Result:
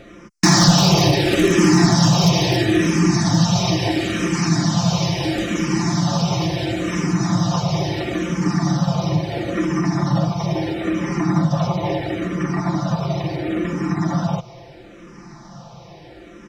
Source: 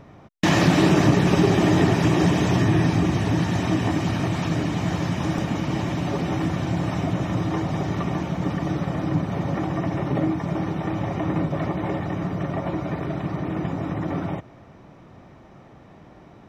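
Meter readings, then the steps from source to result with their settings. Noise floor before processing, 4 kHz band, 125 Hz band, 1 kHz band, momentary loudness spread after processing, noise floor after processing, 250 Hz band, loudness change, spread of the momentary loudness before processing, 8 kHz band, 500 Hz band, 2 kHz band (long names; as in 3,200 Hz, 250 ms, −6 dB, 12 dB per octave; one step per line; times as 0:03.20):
−48 dBFS, +11.0 dB, +4.0 dB, +4.0 dB, 9 LU, −42 dBFS, +4.0 dB, +4.5 dB, 9 LU, +13.5 dB, +3.0 dB, +4.0 dB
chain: parametric band 5,300 Hz +13.5 dB 1 octave
comb filter 5.8 ms, depth 73%
in parallel at −2 dB: downward compressor, threshold −27 dBFS, peak gain reduction 17 dB
on the sum: floating-point word with a short mantissa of 8 bits
wave folding −6.5 dBFS
frequency shifter mixed with the dry sound −0.74 Hz
level +2.5 dB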